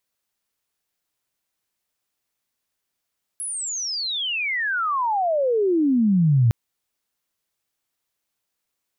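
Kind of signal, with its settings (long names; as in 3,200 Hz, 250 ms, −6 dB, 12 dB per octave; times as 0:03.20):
glide logarithmic 11,000 Hz → 110 Hz −26.5 dBFS → −13 dBFS 3.11 s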